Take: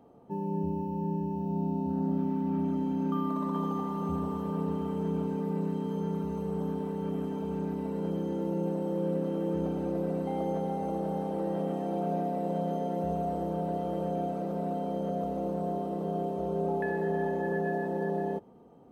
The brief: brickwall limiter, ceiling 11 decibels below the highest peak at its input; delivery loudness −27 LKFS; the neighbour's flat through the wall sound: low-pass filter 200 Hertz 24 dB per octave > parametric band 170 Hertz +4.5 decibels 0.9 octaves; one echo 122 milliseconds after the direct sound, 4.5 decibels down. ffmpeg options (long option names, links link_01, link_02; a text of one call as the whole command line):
ffmpeg -i in.wav -af "alimiter=level_in=6dB:limit=-24dB:level=0:latency=1,volume=-6dB,lowpass=frequency=200:width=0.5412,lowpass=frequency=200:width=1.3066,equalizer=frequency=170:width_type=o:width=0.9:gain=4.5,aecho=1:1:122:0.596,volume=12dB" out.wav